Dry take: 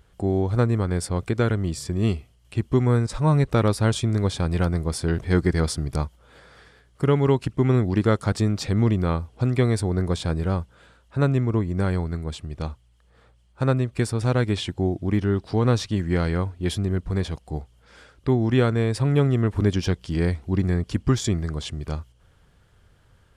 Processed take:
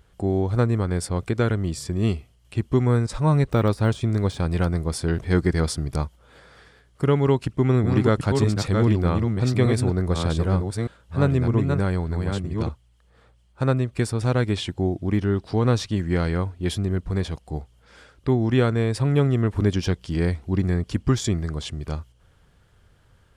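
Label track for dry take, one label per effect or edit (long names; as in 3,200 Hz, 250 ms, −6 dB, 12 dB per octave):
3.440000	4.540000	de-essing amount 85%
7.230000	12.690000	delay that plays each chunk backwards 607 ms, level −4 dB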